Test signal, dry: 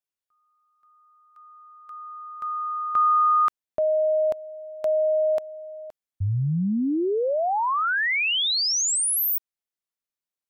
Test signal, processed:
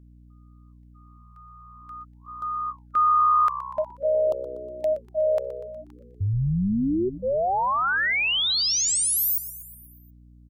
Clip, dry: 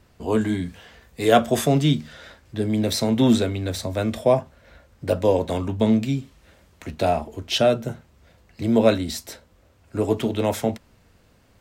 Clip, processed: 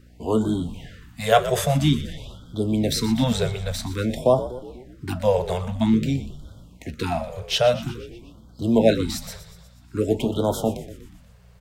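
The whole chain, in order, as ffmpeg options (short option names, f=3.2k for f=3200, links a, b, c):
-filter_complex "[0:a]asplit=7[a][b][c][d][e][f][g];[b]adelay=121,afreqshift=-65,volume=-13.5dB[h];[c]adelay=242,afreqshift=-130,volume=-18.1dB[i];[d]adelay=363,afreqshift=-195,volume=-22.7dB[j];[e]adelay=484,afreqshift=-260,volume=-27.2dB[k];[f]adelay=605,afreqshift=-325,volume=-31.8dB[l];[g]adelay=726,afreqshift=-390,volume=-36.4dB[m];[a][h][i][j][k][l][m]amix=inputs=7:normalize=0,aeval=exprs='val(0)+0.00355*(sin(2*PI*60*n/s)+sin(2*PI*2*60*n/s)/2+sin(2*PI*3*60*n/s)/3+sin(2*PI*4*60*n/s)/4+sin(2*PI*5*60*n/s)/5)':c=same,afftfilt=real='re*(1-between(b*sr/1024,260*pow(2200/260,0.5+0.5*sin(2*PI*0.5*pts/sr))/1.41,260*pow(2200/260,0.5+0.5*sin(2*PI*0.5*pts/sr))*1.41))':imag='im*(1-between(b*sr/1024,260*pow(2200/260,0.5+0.5*sin(2*PI*0.5*pts/sr))/1.41,260*pow(2200/260,0.5+0.5*sin(2*PI*0.5*pts/sr))*1.41))':win_size=1024:overlap=0.75"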